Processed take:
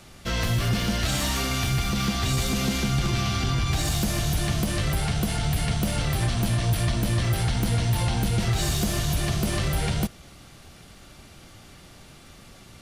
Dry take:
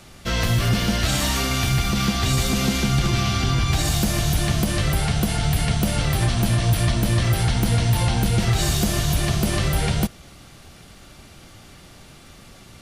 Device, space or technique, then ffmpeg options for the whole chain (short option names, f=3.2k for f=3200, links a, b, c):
parallel distortion: -filter_complex "[0:a]asplit=2[a][b];[b]asoftclip=type=hard:threshold=-24.5dB,volume=-8dB[c];[a][c]amix=inputs=2:normalize=0,volume=-5.5dB"